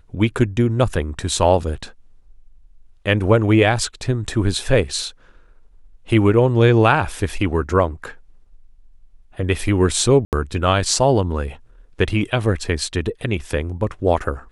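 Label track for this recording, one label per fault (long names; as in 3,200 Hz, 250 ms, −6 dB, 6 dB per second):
10.250000	10.330000	drop-out 78 ms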